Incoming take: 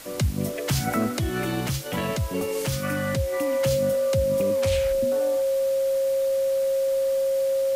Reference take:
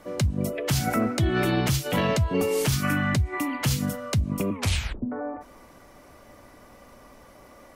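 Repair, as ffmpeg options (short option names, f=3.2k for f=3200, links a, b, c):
-af "bandreject=f=540:w=30,afwtdn=0.0079,asetnsamples=n=441:p=0,asendcmd='1.19 volume volume 3.5dB',volume=0dB"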